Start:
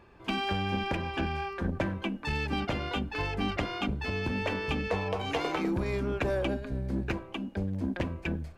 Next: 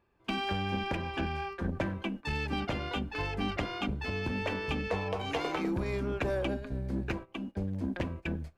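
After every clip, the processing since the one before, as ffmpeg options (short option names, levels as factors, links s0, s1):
-af "agate=range=0.2:threshold=0.0126:ratio=16:detection=peak,volume=0.794"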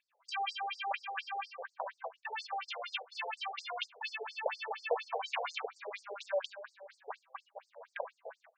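-af "lowshelf=f=330:g=-5,afftfilt=real='re*between(b*sr/1024,580*pow(6400/580,0.5+0.5*sin(2*PI*4.2*pts/sr))/1.41,580*pow(6400/580,0.5+0.5*sin(2*PI*4.2*pts/sr))*1.41)':imag='im*between(b*sr/1024,580*pow(6400/580,0.5+0.5*sin(2*PI*4.2*pts/sr))/1.41,580*pow(6400/580,0.5+0.5*sin(2*PI*4.2*pts/sr))*1.41)':win_size=1024:overlap=0.75,volume=1.78"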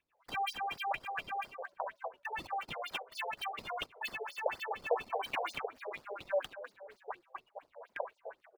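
-filter_complex "[0:a]acrossover=split=960|3500[s0][s1][s2];[s0]asplit=4[s3][s4][s5][s6];[s4]adelay=272,afreqshift=-74,volume=0.0944[s7];[s5]adelay=544,afreqshift=-148,volume=0.0427[s8];[s6]adelay=816,afreqshift=-222,volume=0.0191[s9];[s3][s7][s8][s9]amix=inputs=4:normalize=0[s10];[s2]acrusher=samples=16:mix=1:aa=0.000001:lfo=1:lforange=25.6:lforate=3.4[s11];[s10][s1][s11]amix=inputs=3:normalize=0,volume=1.12"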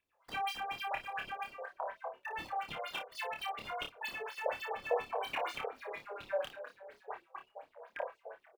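-af "aecho=1:1:27|56:0.708|0.299,volume=0.75"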